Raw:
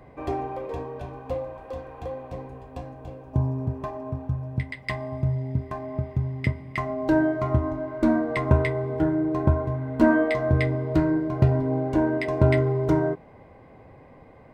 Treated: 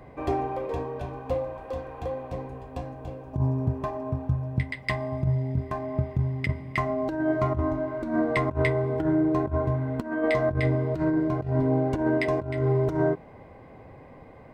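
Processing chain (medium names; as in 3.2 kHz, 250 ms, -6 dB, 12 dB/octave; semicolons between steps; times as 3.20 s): compressor with a negative ratio -23 dBFS, ratio -0.5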